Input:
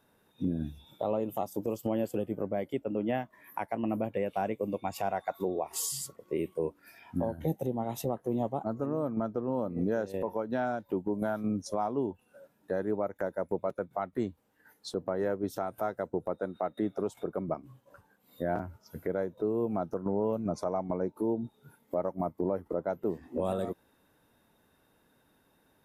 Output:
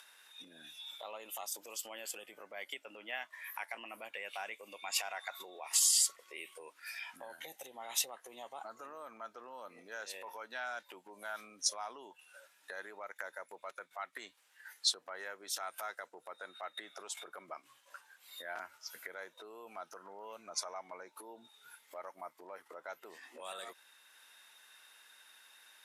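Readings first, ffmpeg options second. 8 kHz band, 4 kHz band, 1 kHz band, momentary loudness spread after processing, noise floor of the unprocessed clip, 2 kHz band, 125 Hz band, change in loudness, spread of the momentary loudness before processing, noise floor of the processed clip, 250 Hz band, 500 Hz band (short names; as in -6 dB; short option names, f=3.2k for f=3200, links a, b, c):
+8.5 dB, +10.5 dB, -9.5 dB, 21 LU, -69 dBFS, +2.5 dB, under -35 dB, -6.0 dB, 5 LU, -69 dBFS, -28.5 dB, -18.0 dB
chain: -af "alimiter=level_in=5.5dB:limit=-24dB:level=0:latency=1:release=50,volume=-5.5dB,acompressor=mode=upward:threshold=-59dB:ratio=2.5,asuperpass=centerf=4600:order=4:qfactor=0.54,volume=13dB"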